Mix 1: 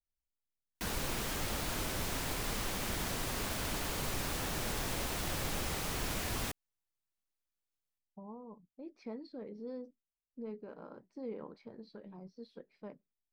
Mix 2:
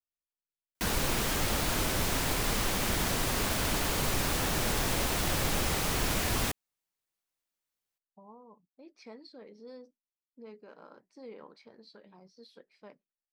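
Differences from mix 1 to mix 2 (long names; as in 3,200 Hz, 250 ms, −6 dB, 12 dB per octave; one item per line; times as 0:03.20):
speech: add spectral tilt +3.5 dB per octave
background +7.0 dB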